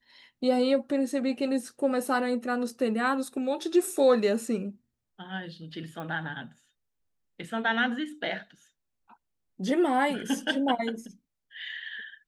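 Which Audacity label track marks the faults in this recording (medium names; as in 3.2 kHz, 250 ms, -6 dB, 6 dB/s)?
6.000000	6.000000	pop -26 dBFS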